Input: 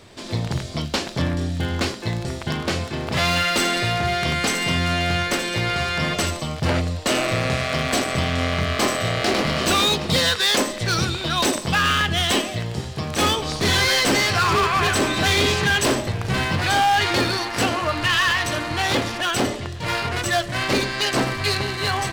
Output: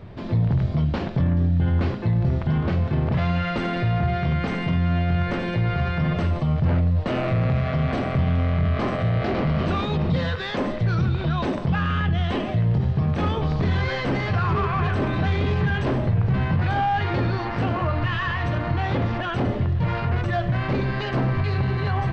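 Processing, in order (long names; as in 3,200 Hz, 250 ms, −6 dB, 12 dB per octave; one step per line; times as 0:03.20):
low shelf with overshoot 220 Hz +6 dB, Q 1.5
hum removal 101.8 Hz, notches 36
brickwall limiter −18 dBFS, peak gain reduction 11.5 dB
head-to-tape spacing loss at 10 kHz 44 dB
level +5.5 dB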